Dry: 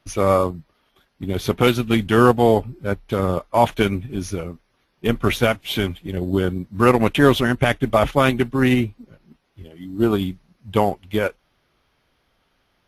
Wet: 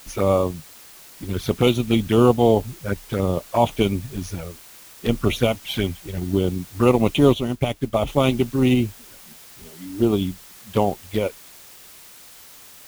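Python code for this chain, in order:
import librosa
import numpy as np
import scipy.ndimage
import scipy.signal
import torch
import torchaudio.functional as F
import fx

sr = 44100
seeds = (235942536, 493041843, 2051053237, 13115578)

y = fx.env_flanger(x, sr, rest_ms=6.5, full_db=-16.0)
y = fx.dmg_noise_colour(y, sr, seeds[0], colour='white', level_db=-45.0)
y = fx.upward_expand(y, sr, threshold_db=-33.0, expansion=1.5, at=(7.32, 8.06), fade=0.02)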